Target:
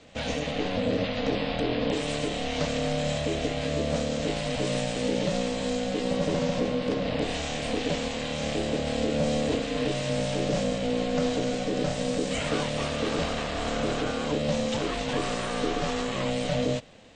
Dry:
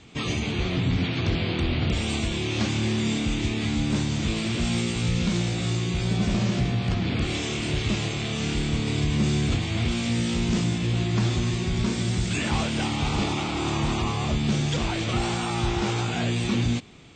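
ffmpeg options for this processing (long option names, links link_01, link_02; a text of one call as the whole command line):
ffmpeg -i in.wav -af "aeval=exprs='val(0)*sin(2*PI*370*n/s)':channel_layout=same" out.wav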